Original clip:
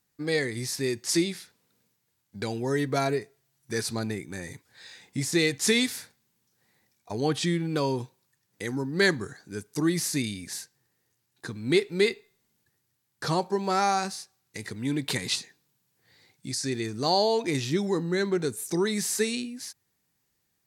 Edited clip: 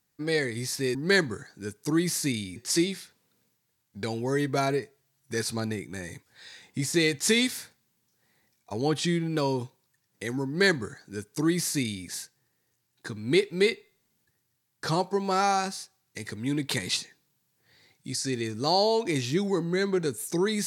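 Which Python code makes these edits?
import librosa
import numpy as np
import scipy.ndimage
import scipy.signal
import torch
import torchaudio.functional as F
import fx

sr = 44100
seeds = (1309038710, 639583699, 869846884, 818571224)

y = fx.edit(x, sr, fx.duplicate(start_s=8.85, length_s=1.61, to_s=0.95), tone=tone)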